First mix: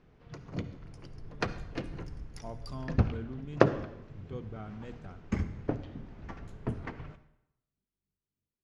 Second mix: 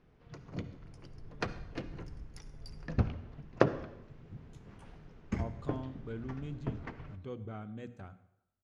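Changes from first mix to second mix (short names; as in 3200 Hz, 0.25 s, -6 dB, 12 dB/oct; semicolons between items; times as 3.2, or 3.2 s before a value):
speech: entry +2.95 s; background -3.5 dB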